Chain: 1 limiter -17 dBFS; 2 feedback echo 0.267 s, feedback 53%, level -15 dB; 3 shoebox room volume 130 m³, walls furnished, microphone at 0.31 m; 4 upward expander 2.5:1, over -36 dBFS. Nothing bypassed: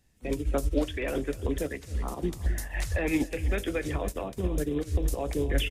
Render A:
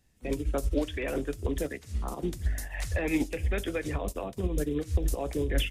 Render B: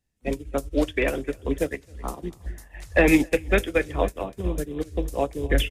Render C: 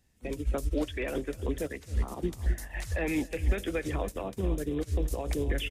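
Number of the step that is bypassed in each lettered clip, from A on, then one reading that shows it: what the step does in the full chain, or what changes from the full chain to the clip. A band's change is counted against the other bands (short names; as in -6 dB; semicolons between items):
2, loudness change -1.0 LU; 1, mean gain reduction 3.5 dB; 3, loudness change -2.0 LU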